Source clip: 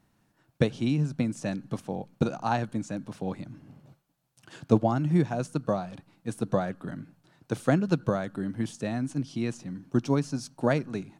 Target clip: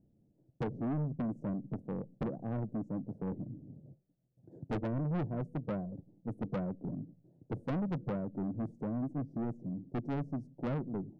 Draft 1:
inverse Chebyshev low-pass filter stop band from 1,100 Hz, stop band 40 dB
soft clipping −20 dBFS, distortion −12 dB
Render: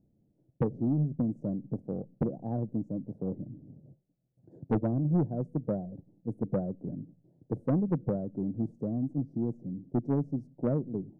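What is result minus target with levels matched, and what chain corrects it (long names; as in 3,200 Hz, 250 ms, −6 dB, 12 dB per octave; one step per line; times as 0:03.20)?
soft clipping: distortion −7 dB
inverse Chebyshev low-pass filter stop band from 1,100 Hz, stop band 40 dB
soft clipping −31 dBFS, distortion −4 dB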